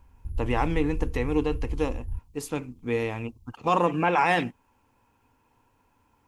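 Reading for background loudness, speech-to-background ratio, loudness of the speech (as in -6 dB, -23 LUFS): -36.5 LUFS, 9.0 dB, -27.5 LUFS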